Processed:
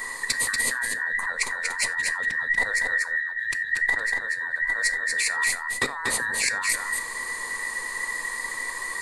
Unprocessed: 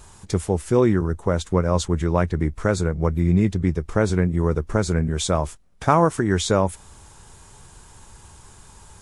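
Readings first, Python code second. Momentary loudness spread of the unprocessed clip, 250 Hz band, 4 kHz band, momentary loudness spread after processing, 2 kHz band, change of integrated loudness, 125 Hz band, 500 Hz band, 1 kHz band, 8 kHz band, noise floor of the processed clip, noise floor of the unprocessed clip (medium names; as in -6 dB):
6 LU, -24.5 dB, +3.0 dB, 6 LU, +13.5 dB, -3.0 dB, under -25 dB, -19.0 dB, -8.0 dB, +6.5 dB, -34 dBFS, -49 dBFS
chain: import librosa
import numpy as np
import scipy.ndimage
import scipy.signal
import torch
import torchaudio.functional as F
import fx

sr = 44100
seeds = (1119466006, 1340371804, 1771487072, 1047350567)

p1 = fx.band_invert(x, sr, width_hz=2000)
p2 = fx.ripple_eq(p1, sr, per_octave=0.96, db=9)
p3 = fx.over_compress(p2, sr, threshold_db=-29.0, ratio=-1.0)
p4 = p3 + fx.echo_single(p3, sr, ms=238, db=-4.0, dry=0)
p5 = fx.rev_gated(p4, sr, seeds[0], gate_ms=110, shape='falling', drr_db=12.0)
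y = p5 * 10.0 ** (1.0 / 20.0)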